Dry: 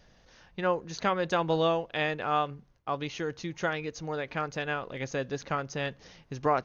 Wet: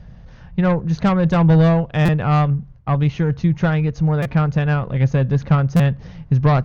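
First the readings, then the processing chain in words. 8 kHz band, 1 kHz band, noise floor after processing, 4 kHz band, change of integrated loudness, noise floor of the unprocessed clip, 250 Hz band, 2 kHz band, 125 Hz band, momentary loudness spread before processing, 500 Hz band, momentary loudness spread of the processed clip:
n/a, +6.0 dB, -41 dBFS, +2.0 dB, +13.5 dB, -61 dBFS, +18.5 dB, +5.5 dB, +24.5 dB, 8 LU, +7.0 dB, 7 LU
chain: LPF 1200 Hz 6 dB/oct; added harmonics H 4 -19 dB, 5 -18 dB, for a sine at -15.5 dBFS; resonant low shelf 220 Hz +11.5 dB, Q 1.5; stuck buffer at 2.05/4.22/5.76, samples 256, times 5; gain +7 dB

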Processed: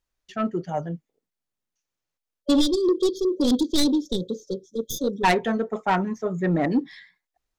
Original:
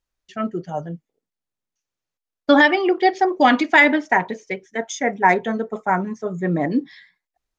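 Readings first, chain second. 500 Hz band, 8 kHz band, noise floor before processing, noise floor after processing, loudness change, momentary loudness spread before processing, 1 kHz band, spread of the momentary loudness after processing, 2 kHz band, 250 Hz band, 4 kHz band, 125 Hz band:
-3.5 dB, n/a, under -85 dBFS, under -85 dBFS, -5.5 dB, 16 LU, -8.5 dB, 11 LU, -14.5 dB, -1.5 dB, 0.0 dB, -0.5 dB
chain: tracing distortion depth 0.19 ms; spectral delete 2.42–5.24, 580–3200 Hz; soft clip -13 dBFS, distortion -12 dB

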